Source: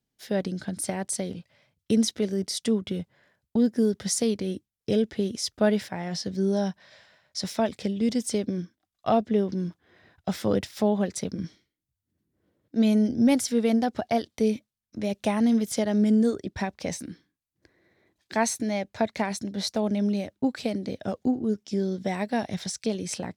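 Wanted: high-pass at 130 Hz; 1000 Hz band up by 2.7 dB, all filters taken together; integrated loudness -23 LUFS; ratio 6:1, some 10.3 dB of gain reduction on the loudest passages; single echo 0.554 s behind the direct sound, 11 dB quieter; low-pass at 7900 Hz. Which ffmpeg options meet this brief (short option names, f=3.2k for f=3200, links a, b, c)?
-af "highpass=130,lowpass=7.9k,equalizer=f=1k:t=o:g=4,acompressor=threshold=-28dB:ratio=6,aecho=1:1:554:0.282,volume=10.5dB"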